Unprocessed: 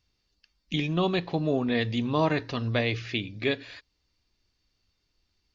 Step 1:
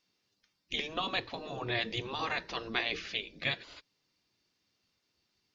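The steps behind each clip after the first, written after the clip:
gate on every frequency bin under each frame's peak −10 dB weak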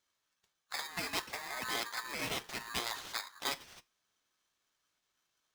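speech leveller 0.5 s
tuned comb filter 130 Hz, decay 0.26 s, harmonics all, mix 40%
ring modulator with a square carrier 1,400 Hz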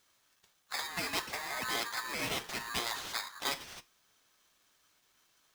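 mu-law and A-law mismatch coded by mu

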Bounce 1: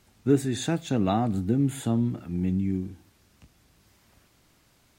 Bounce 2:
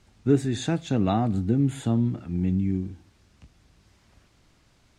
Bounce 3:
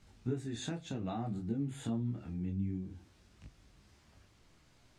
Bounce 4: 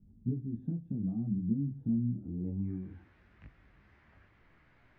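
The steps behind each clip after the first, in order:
low-pass filter 7,500 Hz 12 dB per octave; low-shelf EQ 93 Hz +7.5 dB
downward compressor 3 to 1, threshold −33 dBFS, peak gain reduction 14 dB; micro pitch shift up and down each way 20 cents
low-pass filter sweep 210 Hz → 1,900 Hz, 0:02.16–0:02.83

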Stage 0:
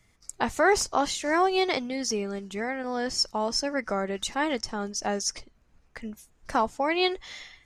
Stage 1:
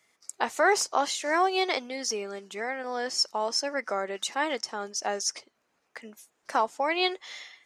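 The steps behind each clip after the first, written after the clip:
high-pass filter 400 Hz 12 dB per octave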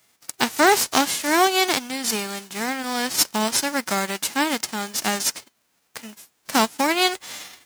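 spectral envelope flattened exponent 0.3
level +6.5 dB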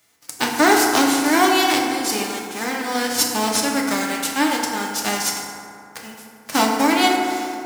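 feedback delay network reverb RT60 2.6 s, high-frequency decay 0.4×, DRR −1 dB
level −1 dB

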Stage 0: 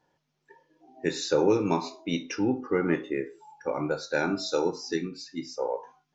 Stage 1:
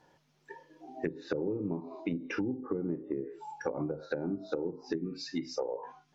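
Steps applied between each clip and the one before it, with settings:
treble cut that deepens with the level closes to 380 Hz, closed at −24.5 dBFS
downward compressor 6 to 1, threshold −38 dBFS, peak gain reduction 16 dB
level +7 dB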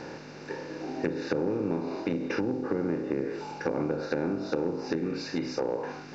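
compressor on every frequency bin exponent 0.4
high-shelf EQ 5,800 Hz −4 dB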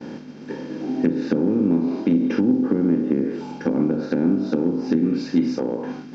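downward expander −39 dBFS
hollow resonant body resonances 230/3,200 Hz, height 18 dB, ringing for 45 ms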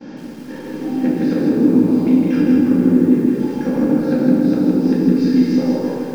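rectangular room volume 500 cubic metres, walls mixed, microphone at 2.2 metres
feedback echo at a low word length 161 ms, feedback 55%, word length 7 bits, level −3 dB
level −3.5 dB

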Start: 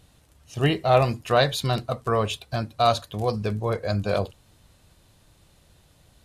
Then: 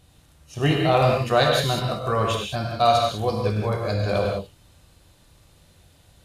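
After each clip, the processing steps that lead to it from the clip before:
reverb whose tail is shaped and stops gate 220 ms flat, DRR −1 dB
level −1 dB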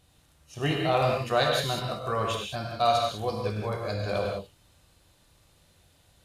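low-shelf EQ 360 Hz −4 dB
level −4.5 dB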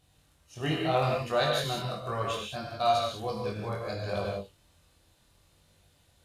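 chorus effect 0.69 Hz, delay 20 ms, depth 5.1 ms

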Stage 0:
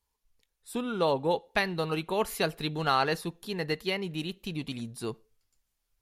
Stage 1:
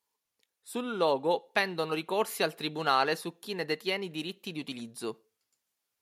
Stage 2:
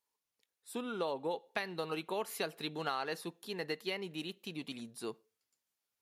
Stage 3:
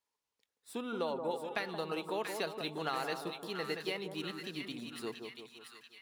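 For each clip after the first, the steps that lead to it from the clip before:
high-pass filter 240 Hz 12 dB per octave
downward compressor, threshold −27 dBFS, peak gain reduction 7 dB; level −5 dB
running median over 3 samples; echo with a time of its own for lows and highs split 1,200 Hz, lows 174 ms, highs 685 ms, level −6 dB

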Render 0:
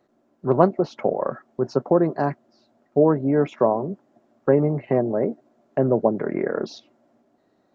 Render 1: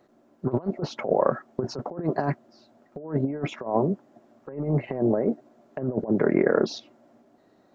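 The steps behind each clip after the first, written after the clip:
compressor whose output falls as the input rises −24 dBFS, ratio −0.5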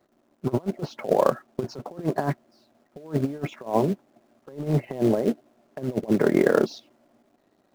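in parallel at −8 dB: log-companded quantiser 4 bits
on the sum: expander for the loud parts 1.5 to 1, over −31 dBFS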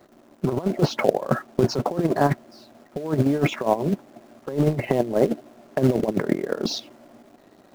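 compressor whose output falls as the input rises −27 dBFS, ratio −0.5
level +7.5 dB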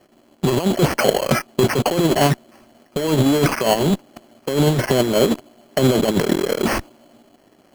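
decimation without filtering 12×
in parallel at −5 dB: fuzz pedal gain 33 dB, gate −36 dBFS
on the sum: level −1 dB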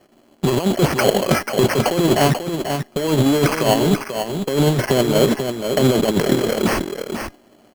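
tuned comb filter 410 Hz, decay 0.49 s, mix 40%
single-tap delay 489 ms −7 dB
level +4.5 dB

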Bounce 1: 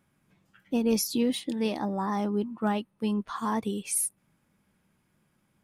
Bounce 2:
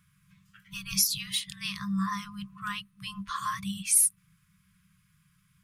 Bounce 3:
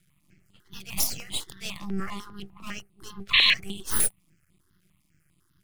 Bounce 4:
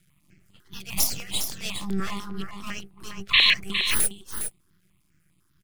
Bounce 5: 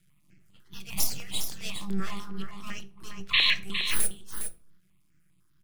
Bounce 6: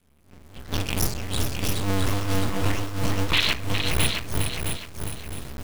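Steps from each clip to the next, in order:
brick-wall band-stop 200–1,000 Hz; parametric band 1,100 Hz −4.5 dB 1.9 octaves; level +6.5 dB
half-wave rectification; sound drawn into the spectrogram noise, 0:03.33–0:03.54, 1,600–4,300 Hz −20 dBFS; step-sequenced phaser 10 Hz 270–5,700 Hz; level +4.5 dB
speech leveller within 3 dB 2 s; single-tap delay 409 ms −8 dB
convolution reverb RT60 0.45 s, pre-delay 6 ms, DRR 11 dB; level −5 dB
sub-harmonics by changed cycles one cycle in 2, muted; camcorder AGC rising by 27 dB per second; feedback echo at a low word length 662 ms, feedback 35%, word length 7 bits, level −5 dB; level +1.5 dB

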